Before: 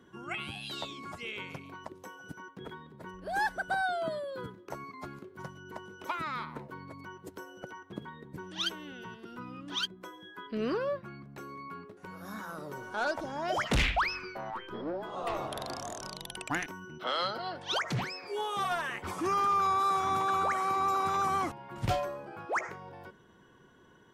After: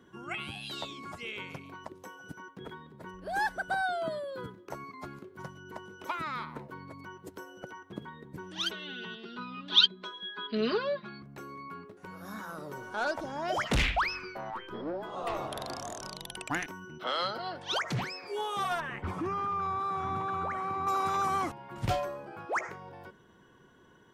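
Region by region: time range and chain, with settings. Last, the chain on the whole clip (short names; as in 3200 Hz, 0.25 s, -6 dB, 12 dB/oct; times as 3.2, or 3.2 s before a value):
8.71–11.22 synth low-pass 3900 Hz, resonance Q 5.5 + low shelf 100 Hz -10.5 dB + comb 4.8 ms, depth 75%
18.8–20.87 compressor 2:1, threshold -34 dBFS + tone controls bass +9 dB, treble -14 dB
whole clip: dry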